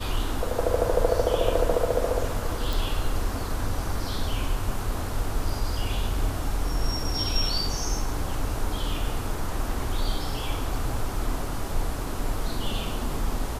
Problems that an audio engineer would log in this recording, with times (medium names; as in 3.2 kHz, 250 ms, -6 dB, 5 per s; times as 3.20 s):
2.73 s: pop